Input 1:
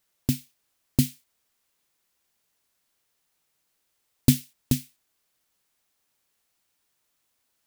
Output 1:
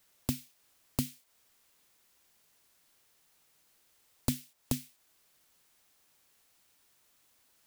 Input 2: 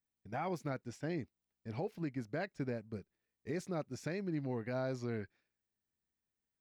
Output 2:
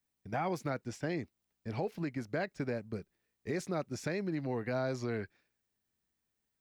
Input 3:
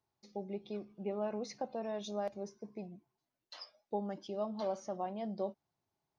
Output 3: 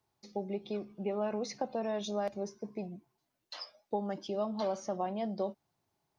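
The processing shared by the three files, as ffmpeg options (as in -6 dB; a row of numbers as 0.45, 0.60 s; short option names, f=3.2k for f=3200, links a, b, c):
-filter_complex "[0:a]acrossover=split=410|1000[a][b][c];[a]acompressor=threshold=-42dB:ratio=4[d];[b]acompressor=threshold=-41dB:ratio=4[e];[c]acompressor=threshold=-44dB:ratio=4[f];[d][e][f]amix=inputs=3:normalize=0,volume=6dB"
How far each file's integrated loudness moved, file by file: -10.5, +3.5, +4.0 LU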